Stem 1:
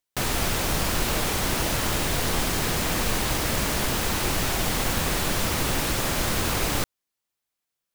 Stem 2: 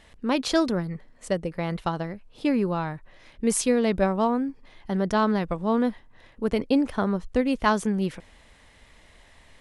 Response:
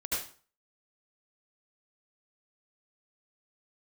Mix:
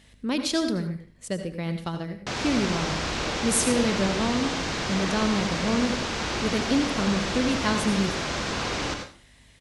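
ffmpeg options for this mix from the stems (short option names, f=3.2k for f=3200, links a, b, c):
-filter_complex "[0:a]lowpass=f=6.3k:w=0.5412,lowpass=f=6.3k:w=1.3066,adelay=2100,volume=-5dB,asplit=2[a][b];[b]volume=-6.5dB[c];[1:a]equalizer=f=860:w=0.49:g=-11,aeval=exprs='val(0)+0.00141*(sin(2*PI*50*n/s)+sin(2*PI*2*50*n/s)/2+sin(2*PI*3*50*n/s)/3+sin(2*PI*4*50*n/s)/4+sin(2*PI*5*50*n/s)/5)':c=same,volume=1.5dB,asplit=2[d][e];[e]volume=-10.5dB[f];[2:a]atrim=start_sample=2205[g];[c][f]amix=inputs=2:normalize=0[h];[h][g]afir=irnorm=-1:irlink=0[i];[a][d][i]amix=inputs=3:normalize=0,highpass=f=130:p=1"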